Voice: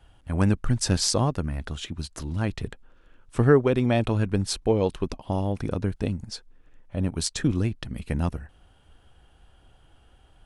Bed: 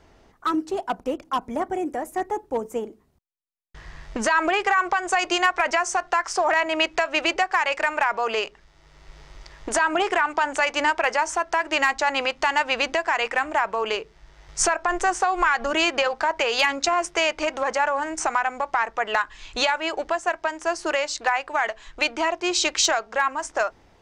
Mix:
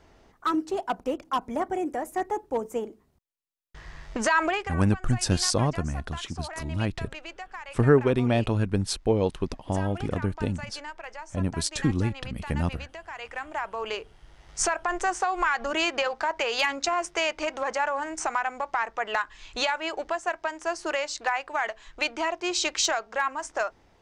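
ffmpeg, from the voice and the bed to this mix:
-filter_complex "[0:a]adelay=4400,volume=-1dB[a];[1:a]volume=12dB,afade=t=out:st=4.42:d=0.32:silence=0.149624,afade=t=in:st=13.06:d=1.13:silence=0.199526[b];[a][b]amix=inputs=2:normalize=0"

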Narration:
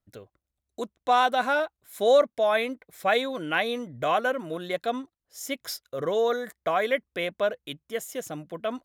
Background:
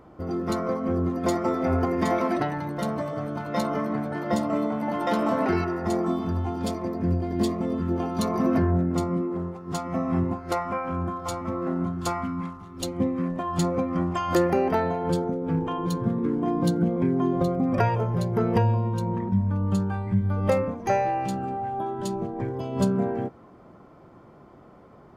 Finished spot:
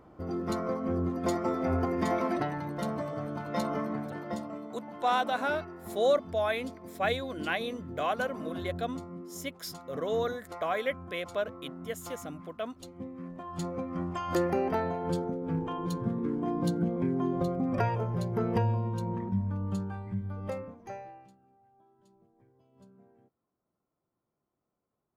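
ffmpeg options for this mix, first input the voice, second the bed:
-filter_complex "[0:a]adelay=3950,volume=-6dB[a];[1:a]volume=5.5dB,afade=t=out:st=3.78:d=0.83:silence=0.266073,afade=t=in:st=13.08:d=1.41:silence=0.298538,afade=t=out:st=19.17:d=2.19:silence=0.0354813[b];[a][b]amix=inputs=2:normalize=0"

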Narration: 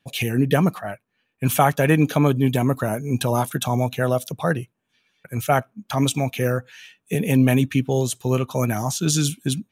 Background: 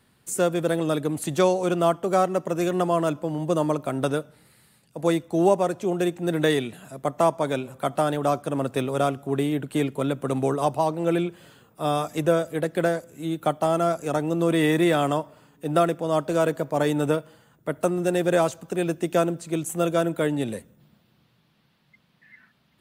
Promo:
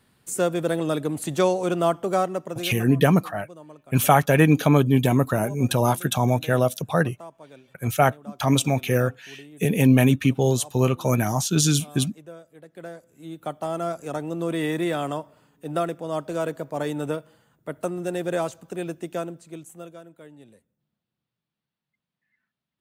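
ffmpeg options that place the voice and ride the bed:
-filter_complex "[0:a]adelay=2500,volume=0.5dB[a];[1:a]volume=16dB,afade=t=out:st=2.07:d=0.84:silence=0.0891251,afade=t=in:st=12.65:d=1.25:silence=0.149624,afade=t=out:st=18.73:d=1.28:silence=0.133352[b];[a][b]amix=inputs=2:normalize=0"

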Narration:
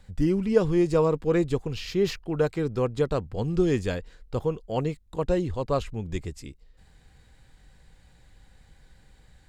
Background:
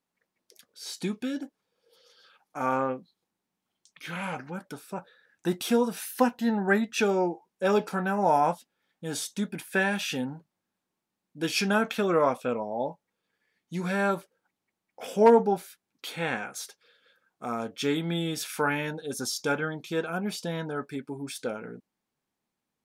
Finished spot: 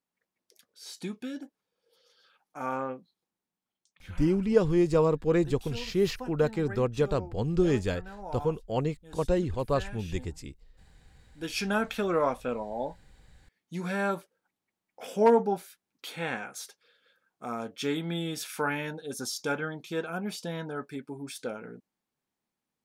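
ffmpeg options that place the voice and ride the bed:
-filter_complex "[0:a]adelay=4000,volume=-1.5dB[a];[1:a]volume=9dB,afade=t=out:st=3.32:d=0.96:silence=0.251189,afade=t=in:st=11.03:d=0.75:silence=0.188365[b];[a][b]amix=inputs=2:normalize=0"

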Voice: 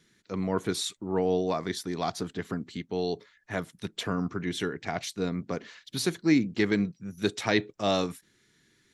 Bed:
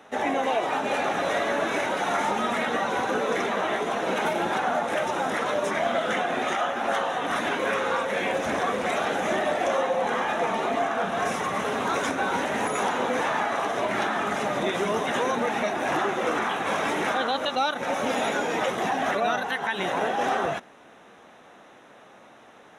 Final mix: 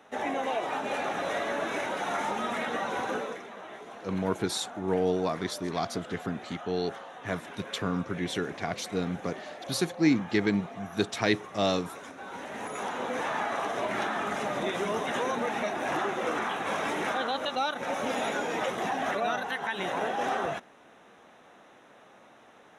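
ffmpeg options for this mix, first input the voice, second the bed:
-filter_complex "[0:a]adelay=3750,volume=-0.5dB[a];[1:a]volume=7.5dB,afade=t=out:st=3.14:d=0.26:silence=0.251189,afade=t=in:st=12.18:d=1.3:silence=0.223872[b];[a][b]amix=inputs=2:normalize=0"

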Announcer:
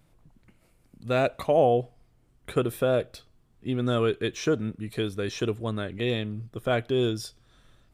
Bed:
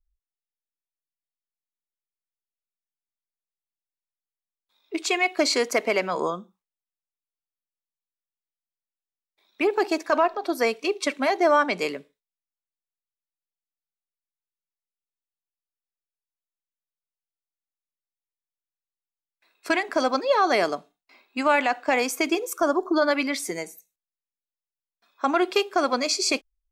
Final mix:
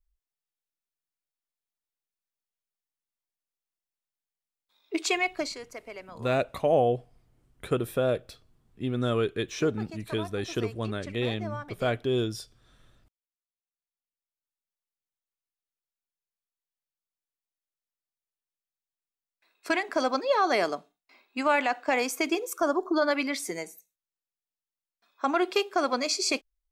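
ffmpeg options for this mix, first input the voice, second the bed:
-filter_complex "[0:a]adelay=5150,volume=-2dB[a];[1:a]volume=15dB,afade=t=out:st=4.99:d=0.59:silence=0.11885,afade=t=in:st=13.66:d=1.09:silence=0.16788[b];[a][b]amix=inputs=2:normalize=0"

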